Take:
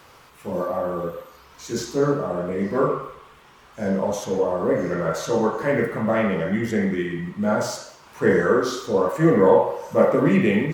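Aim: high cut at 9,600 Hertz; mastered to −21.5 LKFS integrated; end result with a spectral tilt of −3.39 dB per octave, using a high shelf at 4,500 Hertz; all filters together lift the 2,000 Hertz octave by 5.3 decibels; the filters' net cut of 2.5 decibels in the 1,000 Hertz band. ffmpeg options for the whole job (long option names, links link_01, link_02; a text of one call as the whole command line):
ffmpeg -i in.wav -af "lowpass=9600,equalizer=frequency=1000:width_type=o:gain=-5.5,equalizer=frequency=2000:width_type=o:gain=8.5,highshelf=frequency=4500:gain=-3.5,volume=0.5dB" out.wav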